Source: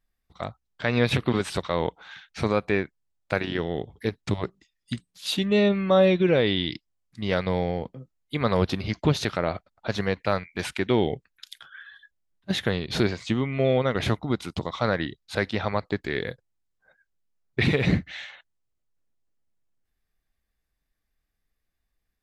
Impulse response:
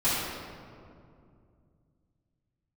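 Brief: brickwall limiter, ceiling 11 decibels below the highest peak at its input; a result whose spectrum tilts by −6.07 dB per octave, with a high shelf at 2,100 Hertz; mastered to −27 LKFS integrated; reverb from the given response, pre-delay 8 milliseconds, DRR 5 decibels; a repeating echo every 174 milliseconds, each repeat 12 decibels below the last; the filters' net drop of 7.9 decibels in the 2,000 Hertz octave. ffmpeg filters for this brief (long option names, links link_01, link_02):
-filter_complex "[0:a]equalizer=frequency=2000:width_type=o:gain=-7,highshelf=frequency=2100:gain=-5,alimiter=limit=-20dB:level=0:latency=1,aecho=1:1:174|348|522:0.251|0.0628|0.0157,asplit=2[link_01][link_02];[1:a]atrim=start_sample=2205,adelay=8[link_03];[link_02][link_03]afir=irnorm=-1:irlink=0,volume=-18dB[link_04];[link_01][link_04]amix=inputs=2:normalize=0,volume=4.5dB"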